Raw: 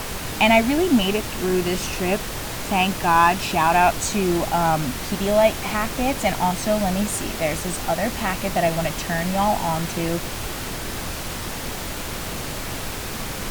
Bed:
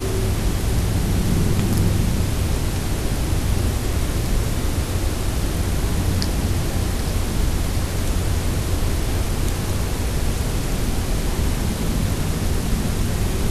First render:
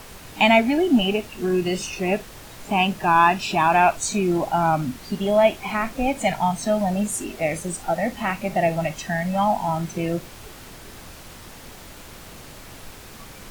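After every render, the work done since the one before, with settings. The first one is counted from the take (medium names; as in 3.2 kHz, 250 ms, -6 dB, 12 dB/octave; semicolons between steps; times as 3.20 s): noise print and reduce 12 dB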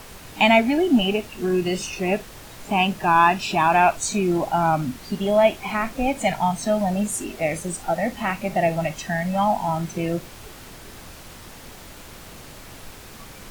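no audible change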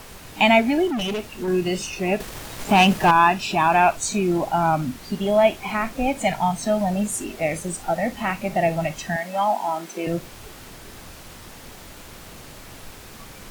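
0.87–1.48 s: hard clipper -23 dBFS; 2.20–3.11 s: waveshaping leveller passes 2; 9.16–10.07 s: high-pass 270 Hz 24 dB/octave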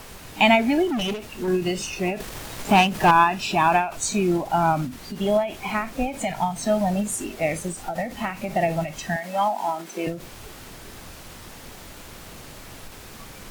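endings held to a fixed fall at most 120 dB/s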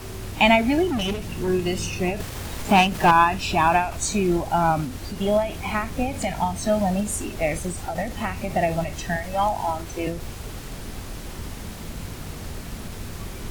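add bed -14 dB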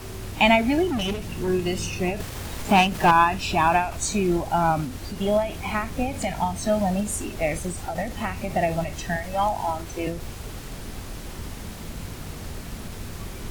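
trim -1 dB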